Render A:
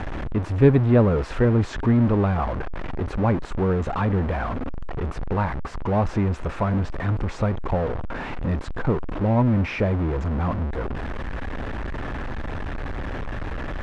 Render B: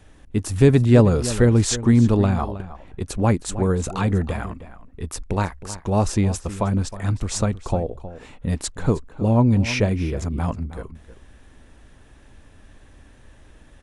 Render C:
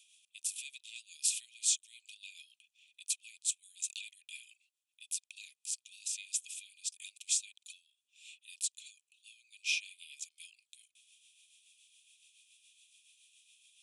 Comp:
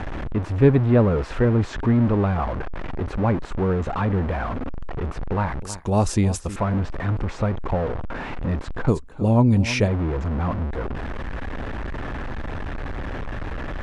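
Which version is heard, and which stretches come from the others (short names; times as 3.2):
A
5.62–6.56 from B
8.88–9.88 from B
not used: C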